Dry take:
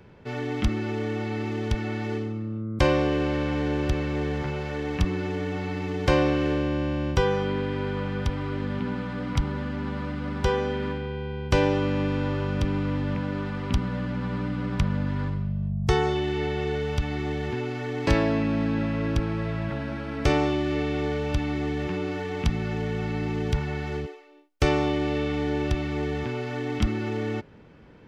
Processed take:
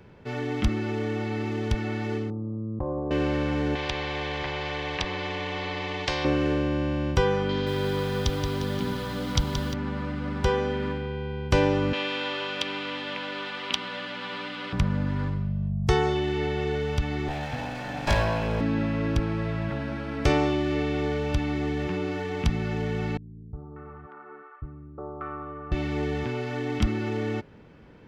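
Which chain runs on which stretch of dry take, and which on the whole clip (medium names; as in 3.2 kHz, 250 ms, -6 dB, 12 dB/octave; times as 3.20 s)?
2.30–3.11 s: steep low-pass 1.1 kHz 48 dB/octave + compression 4:1, threshold -27 dBFS
3.75–6.25 s: low-pass 1.9 kHz + static phaser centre 570 Hz, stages 4 + spectrum-flattening compressor 4:1
7.49–9.74 s: high-order bell 4.6 kHz +10 dB 1.3 oct + bit-crushed delay 176 ms, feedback 55%, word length 7-bit, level -7 dB
11.93–14.73 s: high-pass 460 Hz + peaking EQ 3.3 kHz +13.5 dB 1.3 oct
17.28–18.61 s: comb filter that takes the minimum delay 1.2 ms + hum notches 50/100/150/200/250/300/350 Hz + doubling 20 ms -5.5 dB
23.17–25.72 s: four-pole ladder low-pass 1.3 kHz, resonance 85% + three bands offset in time lows, mids, highs 360/590 ms, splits 250/830 Hz
whole clip: none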